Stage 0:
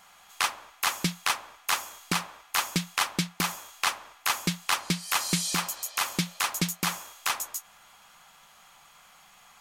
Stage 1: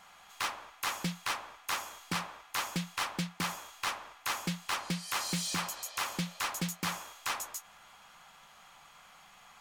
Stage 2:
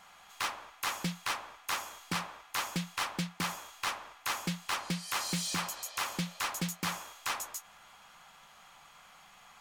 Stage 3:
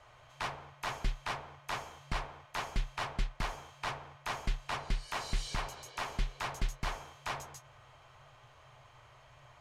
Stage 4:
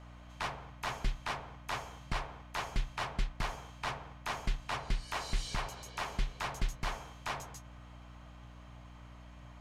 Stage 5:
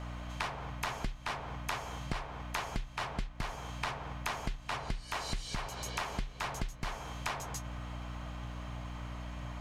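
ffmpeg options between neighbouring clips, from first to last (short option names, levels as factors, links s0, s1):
-af "highshelf=f=6200:g=-8,asoftclip=type=tanh:threshold=0.0398"
-af anull
-af "aemphasis=mode=reproduction:type=bsi,afreqshift=-140,volume=0.794"
-af "aeval=exprs='val(0)+0.00282*(sin(2*PI*60*n/s)+sin(2*PI*2*60*n/s)/2+sin(2*PI*3*60*n/s)/3+sin(2*PI*4*60*n/s)/4+sin(2*PI*5*60*n/s)/5)':c=same"
-af "acompressor=threshold=0.00631:ratio=6,volume=3.16"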